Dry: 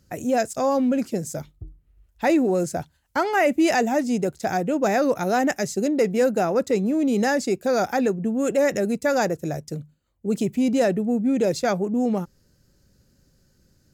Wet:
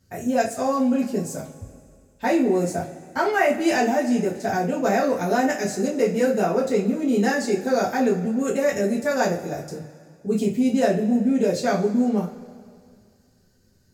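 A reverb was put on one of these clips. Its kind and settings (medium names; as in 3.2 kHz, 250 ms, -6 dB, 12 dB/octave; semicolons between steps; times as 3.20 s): two-slope reverb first 0.27 s, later 2.2 s, from -20 dB, DRR -5.5 dB; trim -6.5 dB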